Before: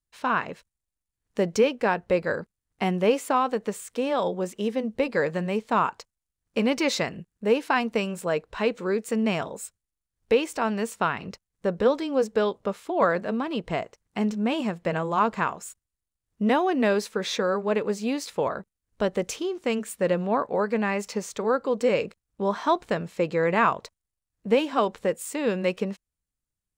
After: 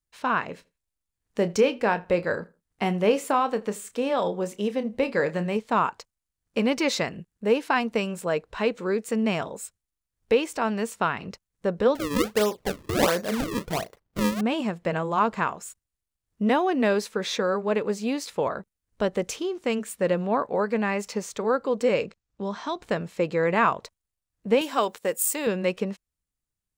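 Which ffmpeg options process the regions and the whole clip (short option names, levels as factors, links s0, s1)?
-filter_complex "[0:a]asettb=1/sr,asplit=3[s0][s1][s2];[s0]atrim=end=0.484[s3];[s1]atrim=start=0.48:end=5.57,asetpts=PTS-STARTPTS,afade=t=in:d=0.004:c=qsin,afade=t=out:st=5.086:d=0.004:c=qsin,asplit=2[s4][s5];[s5]adelay=29,volume=0.251[s6];[s4][s6]amix=inputs=2:normalize=0,atrim=end_sample=224469,asplit=2[s7][s8];[s8]adelay=81,lowpass=f=4600:p=1,volume=0.0708,asplit=2[s9][s10];[s10]adelay=81,lowpass=f=4600:p=1,volume=0.24[s11];[s7][s9][s11]amix=inputs=3:normalize=0,atrim=end_sample=224469[s12];[s2]atrim=start=5.566[s13];[s3][s12]acrossfade=d=0.004:c1=hsin:c2=qsin[s14];[s14][s13]acrossfade=d=0.004:c1=qsin:c2=hsin,asettb=1/sr,asplit=3[s15][s16][s17];[s15]atrim=end=11.954[s18];[s16]atrim=start=11.95:end=14.41,asetpts=PTS-STARTPTS,afade=t=in:d=0.004:c=qsin,afade=t=out:st=2.456:d=0.004:c=qsin,asplit=2[s19][s20];[s20]adelay=38,volume=0.224[s21];[s19][s21]amix=inputs=2:normalize=0,atrim=end_sample=108486,acrusher=samples=34:mix=1:aa=0.000001:lfo=1:lforange=54.4:lforate=1.4[s22];[s17]atrim=start=14.406[s23];[s18][s22]acrossfade=d=0.004:c1=hsin:c2=qsin[s24];[s24][s23]acrossfade=d=0.004:c1=qsin:c2=hsin,asettb=1/sr,asplit=3[s25][s26][s27];[s25]atrim=end=22.044[s28];[s26]atrim=start=22.04:end=22.82,asetpts=PTS-STARTPTS,afade=t=in:d=0.004:c=qsin,afade=t=out:st=0.776:d=0.004:c=qsin,lowpass=f=7500:w=0.5412,lowpass=f=7500:w=1.3066,acrossover=split=230|3000[s29][s30][s31];[s30]acompressor=threshold=0.00794:ratio=1.5:attack=3.2:release=140:knee=2.83:detection=peak[s32];[s29][s32][s31]amix=inputs=3:normalize=0[s33];[s27]atrim=start=22.816[s34];[s28][s33]acrossfade=d=0.004:c1=hsin:c2=qsin[s35];[s35][s34]acrossfade=d=0.004:c1=qsin:c2=hsin,asettb=1/sr,asplit=3[s36][s37][s38];[s36]atrim=end=24.614[s39];[s37]atrim=start=24.61:end=25.47,asetpts=PTS-STARTPTS,afade=t=in:d=0.004:c=qsin,afade=t=out:st=0.856:d=0.004:c=qsin,agate=range=0.251:threshold=0.00398:ratio=16:release=100:detection=peak,aemphasis=mode=production:type=bsi[s40];[s38]atrim=start=25.466[s41];[s39][s40]acrossfade=d=0.004:c1=hsin:c2=qsin[s42];[s42][s41]acrossfade=d=0.004:c1=qsin:c2=hsin"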